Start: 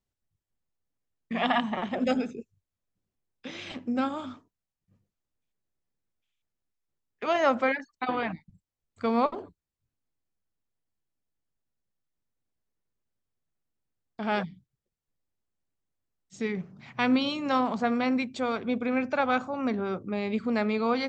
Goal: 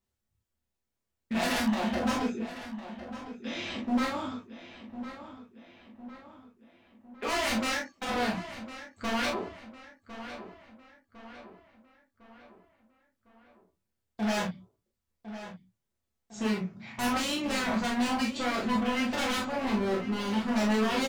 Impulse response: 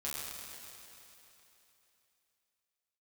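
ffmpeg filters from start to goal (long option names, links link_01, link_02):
-filter_complex "[0:a]aeval=exprs='0.0447*(abs(mod(val(0)/0.0447+3,4)-2)-1)':channel_layout=same,asplit=2[link_01][link_02];[link_02]adelay=1055,lowpass=frequency=3500:poles=1,volume=-12dB,asplit=2[link_03][link_04];[link_04]adelay=1055,lowpass=frequency=3500:poles=1,volume=0.51,asplit=2[link_05][link_06];[link_06]adelay=1055,lowpass=frequency=3500:poles=1,volume=0.51,asplit=2[link_07][link_08];[link_08]adelay=1055,lowpass=frequency=3500:poles=1,volume=0.51,asplit=2[link_09][link_10];[link_10]adelay=1055,lowpass=frequency=3500:poles=1,volume=0.51[link_11];[link_01][link_03][link_05][link_07][link_09][link_11]amix=inputs=6:normalize=0[link_12];[1:a]atrim=start_sample=2205,afade=type=out:start_time=0.13:duration=0.01,atrim=end_sample=6174[link_13];[link_12][link_13]afir=irnorm=-1:irlink=0,volume=4dB"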